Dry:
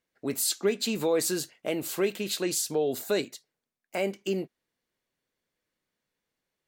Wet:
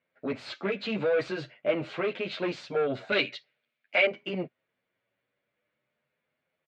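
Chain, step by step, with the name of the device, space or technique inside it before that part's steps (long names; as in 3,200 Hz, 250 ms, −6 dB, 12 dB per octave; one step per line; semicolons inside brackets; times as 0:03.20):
barber-pole flanger into a guitar amplifier (barber-pole flanger 9.3 ms +0.47 Hz; soft clipping −28.5 dBFS, distortion −12 dB; loudspeaker in its box 87–3,400 Hz, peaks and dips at 130 Hz +6 dB, 330 Hz −3 dB, 600 Hz +9 dB, 1,400 Hz +5 dB, 2,300 Hz +6 dB)
0:03.12–0:04.07: meter weighting curve D
level +4.5 dB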